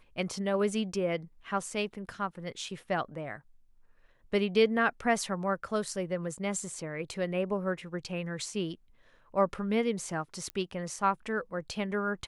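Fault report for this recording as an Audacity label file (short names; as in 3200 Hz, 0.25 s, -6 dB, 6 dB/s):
10.500000	10.500000	pop -22 dBFS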